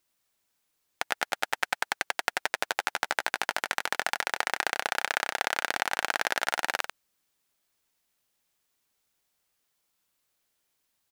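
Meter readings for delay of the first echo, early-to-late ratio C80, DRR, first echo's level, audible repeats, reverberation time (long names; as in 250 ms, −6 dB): 93 ms, no reverb audible, no reverb audible, −8.0 dB, 1, no reverb audible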